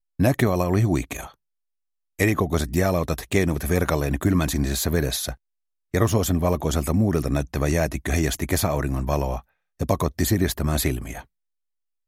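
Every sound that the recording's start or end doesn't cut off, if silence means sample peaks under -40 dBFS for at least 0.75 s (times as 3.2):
2.19–11.22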